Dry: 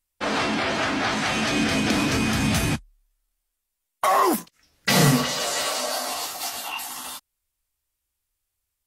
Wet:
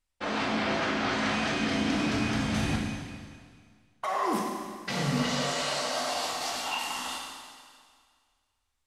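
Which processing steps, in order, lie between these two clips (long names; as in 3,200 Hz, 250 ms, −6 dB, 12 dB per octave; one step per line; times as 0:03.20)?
reversed playback
downward compressor, threshold −28 dBFS, peak gain reduction 14 dB
reversed playback
high-frequency loss of the air 64 metres
four-comb reverb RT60 1.9 s, combs from 33 ms, DRR 0.5 dB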